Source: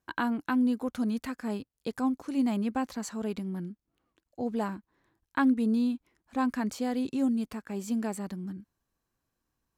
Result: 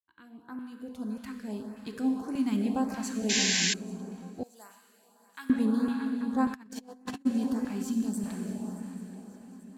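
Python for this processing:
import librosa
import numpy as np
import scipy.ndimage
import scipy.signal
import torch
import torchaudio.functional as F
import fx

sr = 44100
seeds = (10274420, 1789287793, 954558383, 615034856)

y = fx.fade_in_head(x, sr, length_s=2.55)
y = fx.rev_plate(y, sr, seeds[0], rt60_s=4.0, hf_ratio=0.9, predelay_ms=0, drr_db=2.5)
y = fx.filter_lfo_notch(y, sr, shape='saw_up', hz=1.7, low_hz=330.0, high_hz=3900.0, q=0.89)
y = fx.band_shelf(y, sr, hz=970.0, db=-15.5, octaves=2.5, at=(7.82, 8.25), fade=0.02)
y = fx.echo_swing(y, sr, ms=836, ratio=3, feedback_pct=46, wet_db=-17.0)
y = fx.spec_paint(y, sr, seeds[1], shape='noise', start_s=3.29, length_s=0.45, low_hz=1500.0, high_hz=7600.0, level_db=-27.0)
y = fx.differentiator(y, sr, at=(4.43, 5.5))
y = fx.over_compress(y, sr, threshold_db=-38.0, ratio=-0.5, at=(6.52, 7.25), fade=0.02)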